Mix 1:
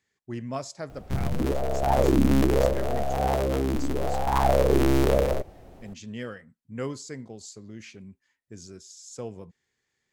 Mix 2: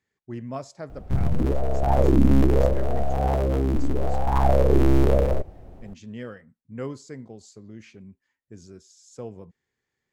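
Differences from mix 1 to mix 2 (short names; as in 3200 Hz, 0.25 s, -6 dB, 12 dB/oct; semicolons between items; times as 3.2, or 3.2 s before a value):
background: add low shelf 140 Hz +7.5 dB; master: add high shelf 2200 Hz -8.5 dB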